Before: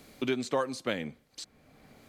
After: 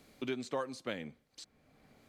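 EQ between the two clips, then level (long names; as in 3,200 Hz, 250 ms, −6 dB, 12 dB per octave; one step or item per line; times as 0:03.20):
high-shelf EQ 10,000 Hz −4 dB
−7.0 dB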